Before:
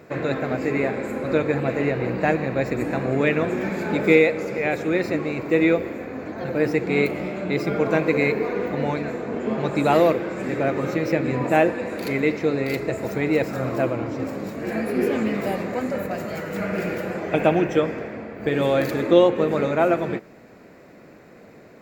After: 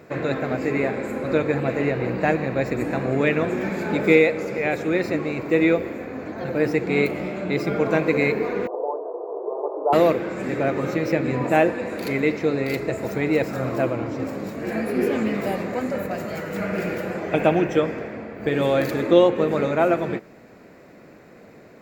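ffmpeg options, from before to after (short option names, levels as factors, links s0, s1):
-filter_complex "[0:a]asettb=1/sr,asplit=3[s0][s1][s2];[s0]atrim=end=8.674[s3];[s1]atrim=start=8.67:end=9.93,asetpts=PTS-STARTPTS,afade=t=in:d=0.004:c=qsin,afade=t=out:st=1.256:d=0.004:c=qsin,asuperpass=centerf=620:order=12:qfactor=0.87[s4];[s2]atrim=start=9.926[s5];[s3][s4]acrossfade=d=0.004:c1=hsin:c2=qsin[s6];[s6][s5]acrossfade=d=0.004:c1=qsin:c2=hsin"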